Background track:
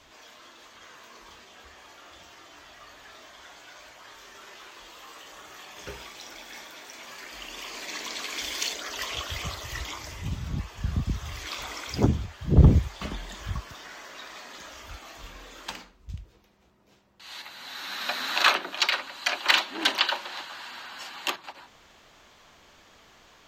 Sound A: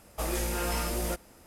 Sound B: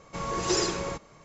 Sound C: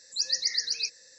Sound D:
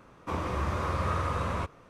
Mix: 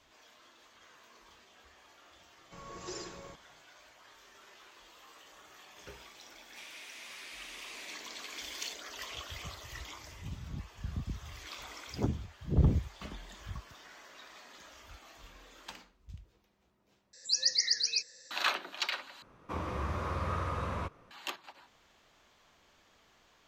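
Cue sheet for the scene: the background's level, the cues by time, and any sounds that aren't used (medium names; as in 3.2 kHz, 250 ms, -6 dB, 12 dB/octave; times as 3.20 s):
background track -10 dB
2.38 s: add B -16.5 dB
6.29 s: add D -1 dB + steep high-pass 2.2 kHz
17.13 s: replace with C -1 dB
19.22 s: replace with D -5 dB + peaking EQ 8.8 kHz -4.5 dB 0.55 oct
not used: A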